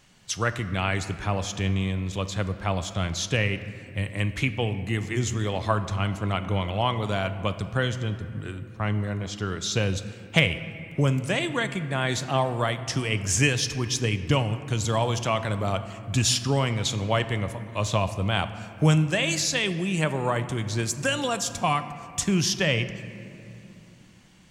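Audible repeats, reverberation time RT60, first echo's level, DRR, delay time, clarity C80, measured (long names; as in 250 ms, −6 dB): no echo audible, 2.8 s, no echo audible, 10.0 dB, no echo audible, 12.5 dB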